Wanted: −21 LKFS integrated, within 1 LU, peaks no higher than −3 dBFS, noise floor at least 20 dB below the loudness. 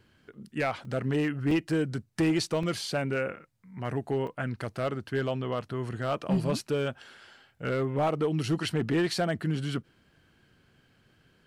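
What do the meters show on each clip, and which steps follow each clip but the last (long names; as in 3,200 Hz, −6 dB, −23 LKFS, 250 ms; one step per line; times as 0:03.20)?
share of clipped samples 0.8%; peaks flattened at −20.0 dBFS; number of dropouts 4; longest dropout 3.2 ms; integrated loudness −30.0 LKFS; sample peak −20.0 dBFS; target loudness −21.0 LKFS
→ clipped peaks rebuilt −20 dBFS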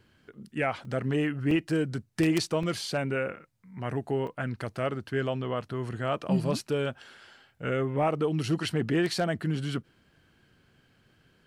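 share of clipped samples 0.0%; number of dropouts 4; longest dropout 3.2 ms
→ repair the gap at 0:00.85/0:01.51/0:02.63/0:04.27, 3.2 ms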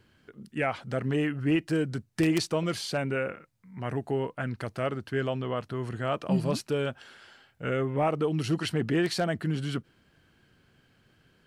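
number of dropouts 0; integrated loudness −30.0 LKFS; sample peak −11.0 dBFS; target loudness −21.0 LKFS
→ level +9 dB
brickwall limiter −3 dBFS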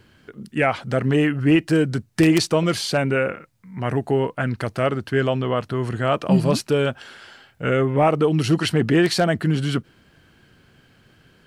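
integrated loudness −21.0 LKFS; sample peak −3.0 dBFS; background noise floor −57 dBFS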